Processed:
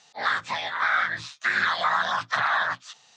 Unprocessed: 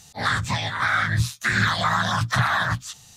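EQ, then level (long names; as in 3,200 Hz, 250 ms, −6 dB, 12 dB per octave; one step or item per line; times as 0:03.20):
high-pass filter 490 Hz 12 dB per octave
Butterworth low-pass 9,300 Hz 48 dB per octave
high-frequency loss of the air 150 metres
0.0 dB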